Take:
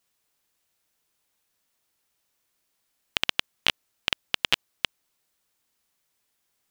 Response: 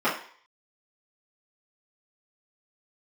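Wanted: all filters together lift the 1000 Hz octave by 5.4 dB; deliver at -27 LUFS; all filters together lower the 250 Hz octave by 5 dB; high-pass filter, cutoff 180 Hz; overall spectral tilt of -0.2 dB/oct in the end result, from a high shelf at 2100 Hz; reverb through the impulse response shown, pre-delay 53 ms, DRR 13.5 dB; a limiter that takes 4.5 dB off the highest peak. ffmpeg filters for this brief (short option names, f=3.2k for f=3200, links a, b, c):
-filter_complex "[0:a]highpass=180,equalizer=f=250:t=o:g=-6,equalizer=f=1k:t=o:g=5,highshelf=f=2.1k:g=8,alimiter=limit=-1.5dB:level=0:latency=1,asplit=2[a][b];[1:a]atrim=start_sample=2205,adelay=53[c];[b][c]afir=irnorm=-1:irlink=0,volume=-29dB[d];[a][d]amix=inputs=2:normalize=0"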